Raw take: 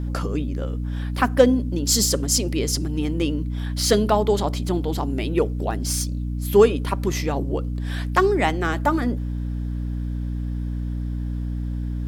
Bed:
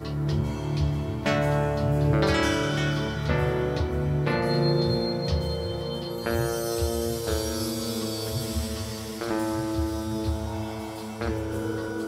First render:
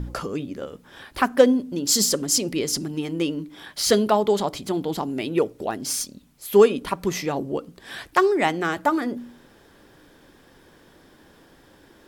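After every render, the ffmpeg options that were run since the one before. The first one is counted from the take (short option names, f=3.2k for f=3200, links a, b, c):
-af "bandreject=f=60:t=h:w=4,bandreject=f=120:t=h:w=4,bandreject=f=180:t=h:w=4,bandreject=f=240:t=h:w=4,bandreject=f=300:t=h:w=4"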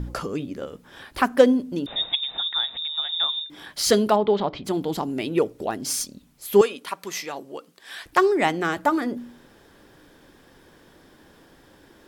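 -filter_complex "[0:a]asettb=1/sr,asplit=3[a][b][c];[a]atrim=end=1.864[d];[b]atrim=start=1.86:end=3.5,asetpts=PTS-STARTPTS,afade=t=in:d=0.004:c=qsin,afade=t=out:st=1.636:d=0.004:c=qsin,lowpass=f=3.3k:t=q:w=0.5098,lowpass=f=3.3k:t=q:w=0.6013,lowpass=f=3.3k:t=q:w=0.9,lowpass=f=3.3k:t=q:w=2.563,afreqshift=-3900[e];[c]atrim=start=3.496[f];[d][e]acrossfade=d=0.004:c1=hsin:c2=qsin[g];[g][f]acrossfade=d=0.004:c1=qsin:c2=hsin,asplit=3[h][i][j];[h]afade=t=out:st=4.15:d=0.02[k];[i]lowpass=f=3.7k:w=0.5412,lowpass=f=3.7k:w=1.3066,afade=t=in:st=4.15:d=0.02,afade=t=out:st=4.64:d=0.02[l];[j]afade=t=in:st=4.64:d=0.02[m];[k][l][m]amix=inputs=3:normalize=0,asettb=1/sr,asplit=3[n][o][p];[n]atrim=end=6.614[q];[o]atrim=start=6.61:end=8.06,asetpts=PTS-STARTPTS,afade=t=in:d=0.004:c=qsin,afade=t=out:st=1.446:d=0.004:c=qsin,highpass=f=1.2k:p=1[r];[p]atrim=start=8.056[s];[q][r]acrossfade=d=0.004:c1=hsin:c2=qsin[t];[t][s]acrossfade=d=0.004:c1=qsin:c2=hsin"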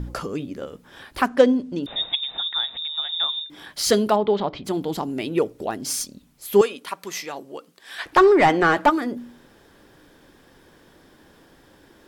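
-filter_complex "[0:a]asettb=1/sr,asplit=3[a][b][c];[a]atrim=end=1.264[d];[b]atrim=start=1.26:end=1.83,asetpts=PTS-STARTPTS,afade=t=in:d=0.004:c=qsin,afade=t=out:st=0.566:d=0.004:c=qsin,lowpass=7k[e];[c]atrim=start=1.826[f];[d][e]acrossfade=d=0.004:c1=hsin:c2=qsin[g];[g][f]acrossfade=d=0.004:c1=qsin:c2=hsin,asplit=3[h][i][j];[h]afade=t=out:st=7.98:d=0.02[k];[i]asplit=2[l][m];[m]highpass=f=720:p=1,volume=20dB,asoftclip=type=tanh:threshold=-4.5dB[n];[l][n]amix=inputs=2:normalize=0,lowpass=f=1.6k:p=1,volume=-6dB,afade=t=in:st=7.98:d=0.02,afade=t=out:st=8.89:d=0.02[o];[j]afade=t=in:st=8.89:d=0.02[p];[k][o][p]amix=inputs=3:normalize=0"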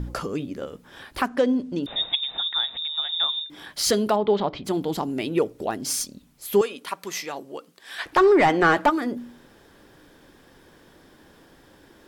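-af "alimiter=limit=-10dB:level=0:latency=1:release=204"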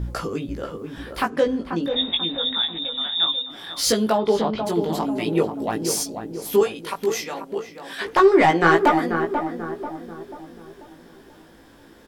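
-filter_complex "[0:a]asplit=2[a][b];[b]adelay=18,volume=-3dB[c];[a][c]amix=inputs=2:normalize=0,asplit=2[d][e];[e]adelay=488,lowpass=f=1.2k:p=1,volume=-6dB,asplit=2[f][g];[g]adelay=488,lowpass=f=1.2k:p=1,volume=0.5,asplit=2[h][i];[i]adelay=488,lowpass=f=1.2k:p=1,volume=0.5,asplit=2[j][k];[k]adelay=488,lowpass=f=1.2k:p=1,volume=0.5,asplit=2[l][m];[m]adelay=488,lowpass=f=1.2k:p=1,volume=0.5,asplit=2[n][o];[o]adelay=488,lowpass=f=1.2k:p=1,volume=0.5[p];[d][f][h][j][l][n][p]amix=inputs=7:normalize=0"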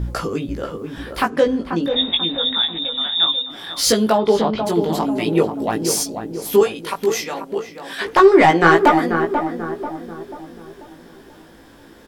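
-af "volume=4dB,alimiter=limit=-1dB:level=0:latency=1"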